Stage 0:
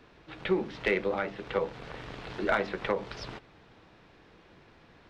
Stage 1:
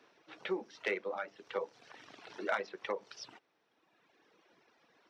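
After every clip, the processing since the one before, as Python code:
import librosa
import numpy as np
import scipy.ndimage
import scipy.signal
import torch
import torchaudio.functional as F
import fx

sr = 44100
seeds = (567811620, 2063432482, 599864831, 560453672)

y = scipy.signal.sosfilt(scipy.signal.butter(2, 320.0, 'highpass', fs=sr, output='sos'), x)
y = fx.peak_eq(y, sr, hz=5700.0, db=9.0, octaves=0.22)
y = fx.dereverb_blind(y, sr, rt60_s=1.7)
y = y * librosa.db_to_amplitude(-6.0)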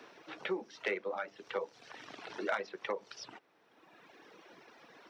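y = fx.band_squash(x, sr, depth_pct=40)
y = y * librosa.db_to_amplitude(1.0)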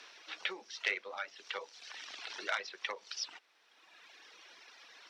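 y = fx.bandpass_q(x, sr, hz=4900.0, q=0.84)
y = y * librosa.db_to_amplitude(9.5)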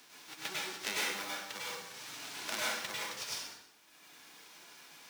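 y = fx.envelope_flatten(x, sr, power=0.3)
y = fx.rev_plate(y, sr, seeds[0], rt60_s=0.91, hf_ratio=0.85, predelay_ms=85, drr_db=-6.5)
y = y * librosa.db_to_amplitude(-5.0)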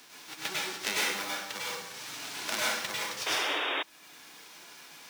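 y = fx.spec_paint(x, sr, seeds[1], shape='noise', start_s=3.26, length_s=0.57, low_hz=270.0, high_hz=3800.0, level_db=-36.0)
y = y * librosa.db_to_amplitude(5.0)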